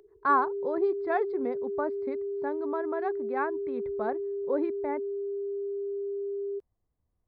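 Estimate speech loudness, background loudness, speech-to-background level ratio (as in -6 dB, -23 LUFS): -32.0 LUFS, -34.0 LUFS, 2.0 dB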